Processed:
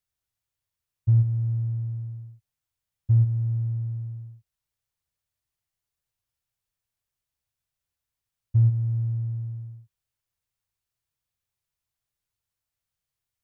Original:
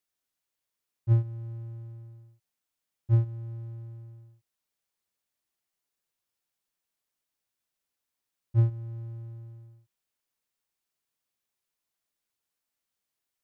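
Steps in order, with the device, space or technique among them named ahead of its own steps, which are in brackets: car stereo with a boomy subwoofer (resonant low shelf 160 Hz +13 dB, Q 1.5; limiter -11.5 dBFS, peak gain reduction 11.5 dB); gain -2 dB

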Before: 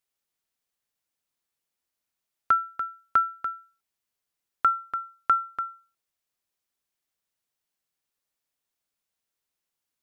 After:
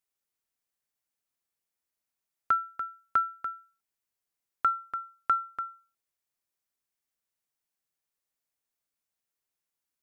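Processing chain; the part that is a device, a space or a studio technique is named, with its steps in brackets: exciter from parts (in parallel at -12 dB: HPF 2200 Hz 24 dB/oct + soft clip -37.5 dBFS, distortion -10 dB + HPF 2600 Hz); on the sum: gain -4 dB

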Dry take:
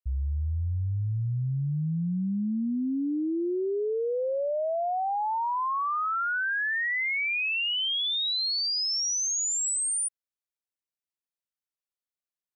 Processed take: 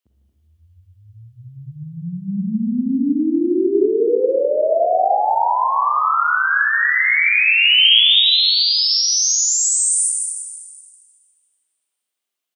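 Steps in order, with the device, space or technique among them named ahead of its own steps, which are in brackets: stadium PA (HPF 230 Hz 24 dB/oct; bell 3100 Hz +6.5 dB 0.45 oct; loudspeakers at several distances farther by 51 m -10 dB, 78 m -10 dB; reverb RT60 2.2 s, pre-delay 34 ms, DRR 1 dB); gain +8 dB

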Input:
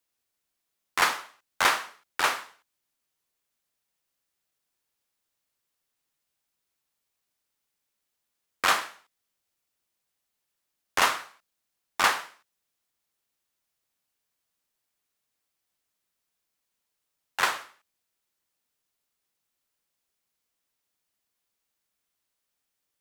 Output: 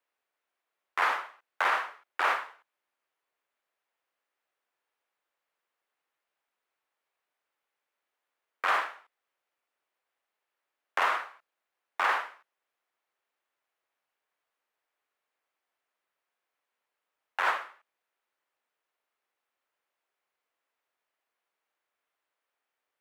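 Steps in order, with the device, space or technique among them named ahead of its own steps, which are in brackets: DJ mixer with the lows and highs turned down (three-band isolator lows -23 dB, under 370 Hz, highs -18 dB, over 2600 Hz; limiter -21 dBFS, peak gain reduction 11 dB); gain +5 dB

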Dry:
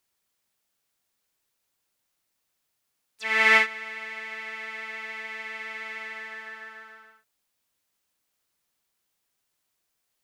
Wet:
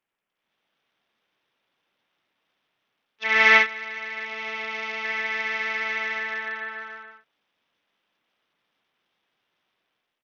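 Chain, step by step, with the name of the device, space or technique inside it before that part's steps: 4.25–5.05 bell 1700 Hz -9 dB 0.51 oct; Bluetooth headset (HPF 160 Hz 12 dB/oct; AGC gain up to 10 dB; downsampling 8000 Hz; gain -1 dB; SBC 64 kbps 48000 Hz)

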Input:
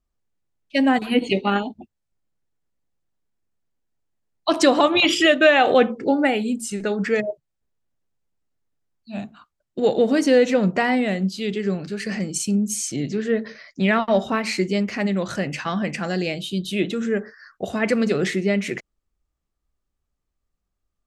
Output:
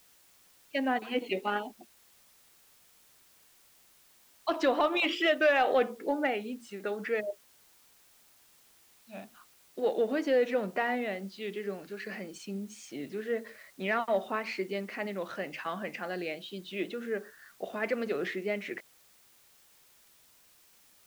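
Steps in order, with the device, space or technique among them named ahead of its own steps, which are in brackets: tape answering machine (BPF 350–3000 Hz; soft clip -7 dBFS, distortion -23 dB; wow and flutter; white noise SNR 28 dB); gain -8 dB

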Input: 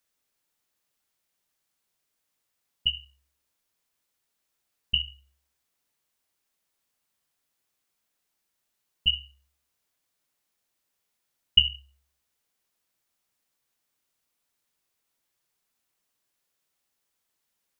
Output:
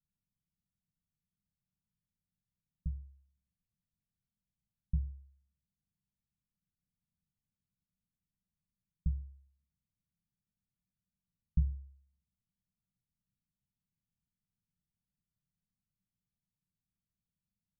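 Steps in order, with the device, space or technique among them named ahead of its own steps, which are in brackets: the neighbour's flat through the wall (LPF 170 Hz 24 dB/oct; bell 190 Hz +7.5 dB 0.55 oct); gain +5.5 dB

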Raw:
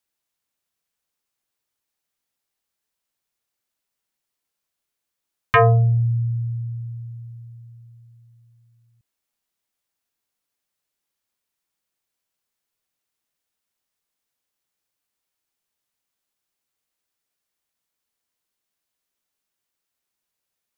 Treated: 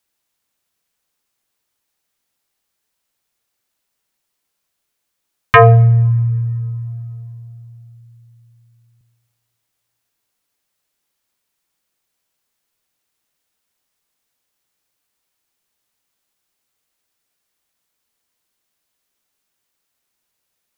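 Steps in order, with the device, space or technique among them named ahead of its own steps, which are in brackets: compressed reverb return (on a send at -14 dB: reverb RT60 2.1 s, pre-delay 77 ms + compressor 5:1, threshold -25 dBFS, peak gain reduction 14.5 dB); on the sum: gain +7.5 dB

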